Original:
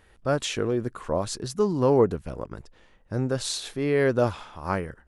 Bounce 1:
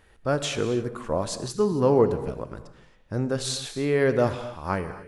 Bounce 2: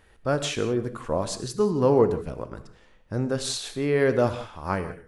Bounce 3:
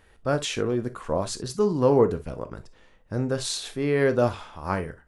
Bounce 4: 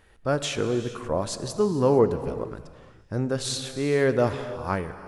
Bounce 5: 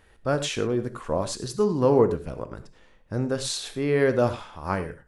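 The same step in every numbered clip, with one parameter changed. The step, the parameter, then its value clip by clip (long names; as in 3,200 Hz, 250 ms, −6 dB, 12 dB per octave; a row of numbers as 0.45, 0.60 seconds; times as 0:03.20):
reverb whose tail is shaped and stops, gate: 300, 200, 80, 490, 130 milliseconds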